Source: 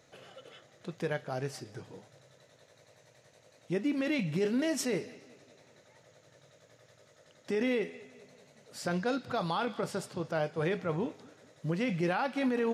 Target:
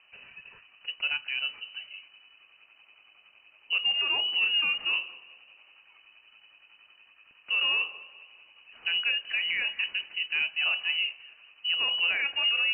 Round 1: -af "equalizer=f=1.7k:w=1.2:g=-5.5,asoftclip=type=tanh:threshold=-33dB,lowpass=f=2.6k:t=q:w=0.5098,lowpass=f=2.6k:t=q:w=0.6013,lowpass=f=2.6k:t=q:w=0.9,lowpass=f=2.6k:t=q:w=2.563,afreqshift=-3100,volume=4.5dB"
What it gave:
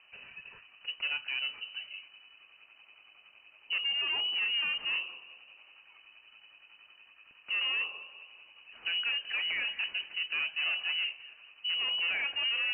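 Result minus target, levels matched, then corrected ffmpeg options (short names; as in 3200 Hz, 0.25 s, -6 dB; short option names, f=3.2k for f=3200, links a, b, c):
soft clip: distortion +16 dB
-af "equalizer=f=1.7k:w=1.2:g=-5.5,asoftclip=type=tanh:threshold=-21dB,lowpass=f=2.6k:t=q:w=0.5098,lowpass=f=2.6k:t=q:w=0.6013,lowpass=f=2.6k:t=q:w=0.9,lowpass=f=2.6k:t=q:w=2.563,afreqshift=-3100,volume=4.5dB"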